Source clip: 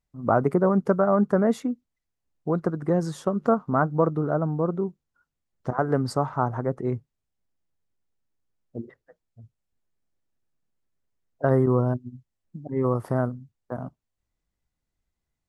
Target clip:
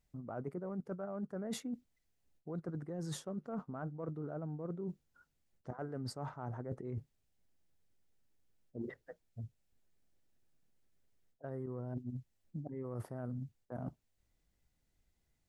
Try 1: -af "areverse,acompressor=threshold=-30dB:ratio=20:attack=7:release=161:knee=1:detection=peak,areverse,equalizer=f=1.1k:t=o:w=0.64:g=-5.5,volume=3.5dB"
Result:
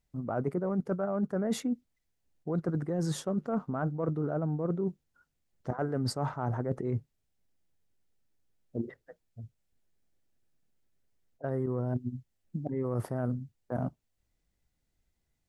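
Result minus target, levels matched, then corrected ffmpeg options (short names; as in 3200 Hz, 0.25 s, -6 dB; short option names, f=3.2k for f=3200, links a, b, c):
compressor: peak gain reduction -10.5 dB
-af "areverse,acompressor=threshold=-41dB:ratio=20:attack=7:release=161:knee=1:detection=peak,areverse,equalizer=f=1.1k:t=o:w=0.64:g=-5.5,volume=3.5dB"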